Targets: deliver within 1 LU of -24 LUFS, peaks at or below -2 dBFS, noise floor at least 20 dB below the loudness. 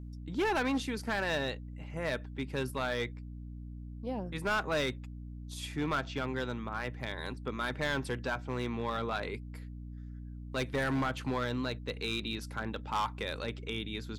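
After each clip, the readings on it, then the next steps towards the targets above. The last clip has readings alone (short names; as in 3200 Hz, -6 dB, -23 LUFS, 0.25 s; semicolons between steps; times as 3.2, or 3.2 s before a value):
clipped 1.6%; flat tops at -26.0 dBFS; hum 60 Hz; harmonics up to 300 Hz; hum level -41 dBFS; loudness -35.0 LUFS; peak -26.0 dBFS; loudness target -24.0 LUFS
-> clip repair -26 dBFS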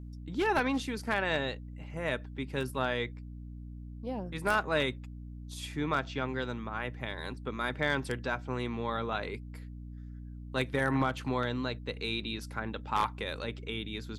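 clipped 0.0%; hum 60 Hz; harmonics up to 300 Hz; hum level -41 dBFS
-> de-hum 60 Hz, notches 5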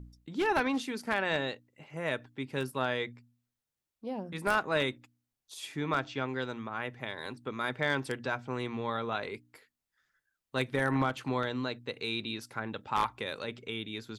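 hum none; loudness -33.5 LUFS; peak -16.5 dBFS; loudness target -24.0 LUFS
-> gain +9.5 dB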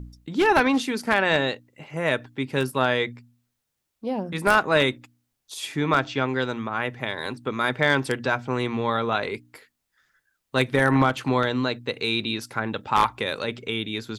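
loudness -24.0 LUFS; peak -7.0 dBFS; noise floor -79 dBFS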